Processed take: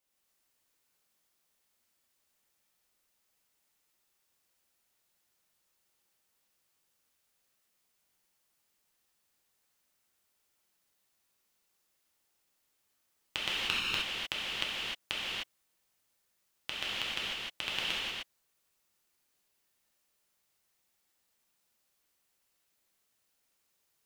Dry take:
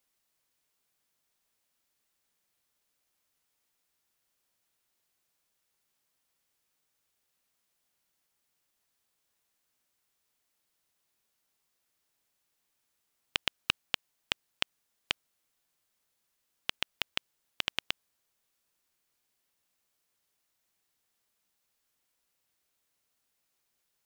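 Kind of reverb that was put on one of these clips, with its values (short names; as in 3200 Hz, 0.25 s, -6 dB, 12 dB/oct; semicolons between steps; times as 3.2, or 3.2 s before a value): non-linear reverb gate 0.33 s flat, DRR -8 dB; gain -6.5 dB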